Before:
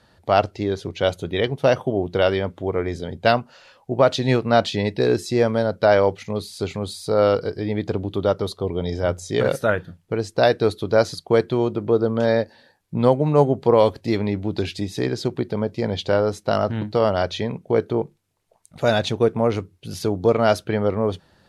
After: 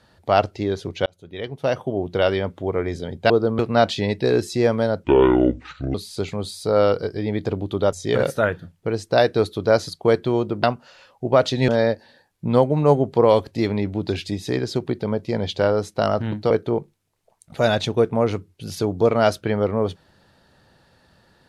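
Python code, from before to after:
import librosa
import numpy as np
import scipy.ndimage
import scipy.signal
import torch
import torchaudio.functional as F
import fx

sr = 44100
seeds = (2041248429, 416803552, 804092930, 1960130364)

y = fx.edit(x, sr, fx.fade_in_span(start_s=1.06, length_s=1.57, curve='qsin'),
    fx.swap(start_s=3.3, length_s=1.05, other_s=11.89, other_length_s=0.29),
    fx.speed_span(start_s=5.8, length_s=0.57, speed=0.63),
    fx.cut(start_s=8.35, length_s=0.83),
    fx.cut(start_s=17.0, length_s=0.74), tone=tone)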